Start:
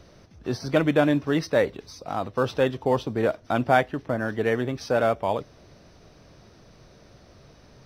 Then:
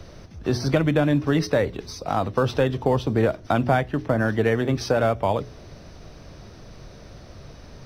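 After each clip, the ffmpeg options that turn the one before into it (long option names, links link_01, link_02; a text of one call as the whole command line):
ffmpeg -i in.wav -filter_complex "[0:a]lowshelf=frequency=86:gain=8.5,acrossover=split=150[link_01][link_02];[link_02]acompressor=threshold=-24dB:ratio=6[link_03];[link_01][link_03]amix=inputs=2:normalize=0,bandreject=frequency=60.95:width_type=h:width=4,bandreject=frequency=121.9:width_type=h:width=4,bandreject=frequency=182.85:width_type=h:width=4,bandreject=frequency=243.8:width_type=h:width=4,bandreject=frequency=304.75:width_type=h:width=4,bandreject=frequency=365.7:width_type=h:width=4,bandreject=frequency=426.65:width_type=h:width=4,volume=6.5dB" out.wav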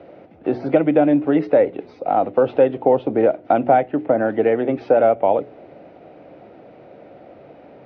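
ffmpeg -i in.wav -af "highpass=260,equalizer=frequency=300:width_type=q:width=4:gain=6,equalizer=frequency=530:width_type=q:width=4:gain=6,equalizer=frequency=750:width_type=q:width=4:gain=7,equalizer=frequency=1100:width_type=q:width=4:gain=-9,equalizer=frequency=1700:width_type=q:width=4:gain=-7,lowpass=frequency=2400:width=0.5412,lowpass=frequency=2400:width=1.3066,volume=2.5dB" out.wav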